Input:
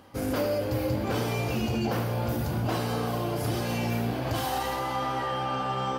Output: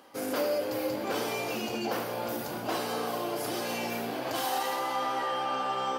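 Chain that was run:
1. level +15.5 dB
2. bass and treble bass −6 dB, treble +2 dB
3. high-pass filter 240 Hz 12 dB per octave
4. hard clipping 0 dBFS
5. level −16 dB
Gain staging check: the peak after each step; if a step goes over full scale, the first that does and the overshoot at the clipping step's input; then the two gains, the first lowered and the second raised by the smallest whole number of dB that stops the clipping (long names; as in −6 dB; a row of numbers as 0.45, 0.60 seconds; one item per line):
−1.5, −2.5, −2.5, −2.5, −18.5 dBFS
no step passes full scale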